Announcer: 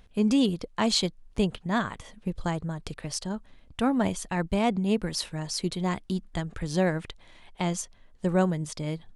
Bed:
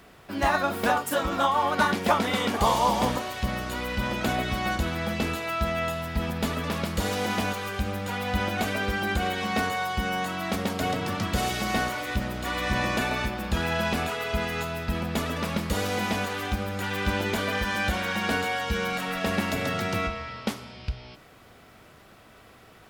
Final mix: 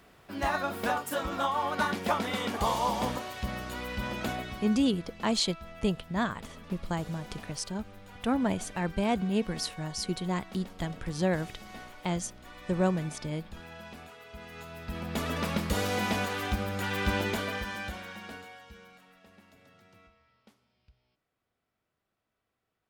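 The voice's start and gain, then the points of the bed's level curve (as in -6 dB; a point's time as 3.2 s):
4.45 s, -3.0 dB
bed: 4.25 s -6 dB
4.94 s -19.5 dB
14.31 s -19.5 dB
15.32 s -2 dB
17.21 s -2 dB
19.3 s -31.5 dB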